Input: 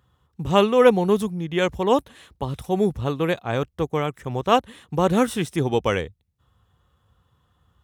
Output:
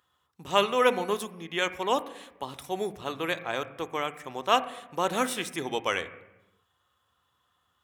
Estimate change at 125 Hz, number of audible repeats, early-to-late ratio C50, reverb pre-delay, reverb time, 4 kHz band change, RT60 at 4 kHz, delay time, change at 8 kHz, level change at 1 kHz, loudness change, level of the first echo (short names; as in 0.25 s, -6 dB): -18.0 dB, none, 14.0 dB, 3 ms, 1.0 s, -0.5 dB, 0.80 s, none, 0.0 dB, -4.0 dB, -7.0 dB, none